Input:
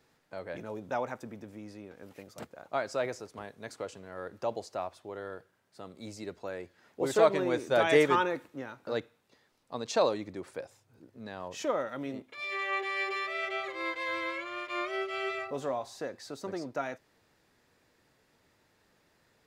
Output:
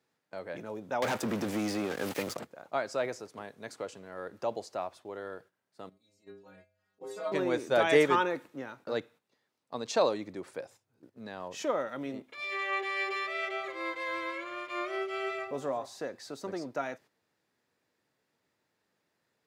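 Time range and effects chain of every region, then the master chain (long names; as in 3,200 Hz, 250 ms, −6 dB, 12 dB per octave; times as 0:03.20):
0:01.02–0:02.37: leveller curve on the samples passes 5 + low-shelf EQ 470 Hz −4 dB + multiband upward and downward compressor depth 70%
0:05.89–0:07.32: stiff-string resonator 94 Hz, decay 0.73 s, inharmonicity 0.008 + upward compression, threshold −58 dBFS
0:13.51–0:15.86: parametric band 3,400 Hz −3.5 dB 1.8 octaves + single-tap delay 135 ms −15 dB
whole clip: noise gate −54 dBFS, range −10 dB; high-pass filter 120 Hz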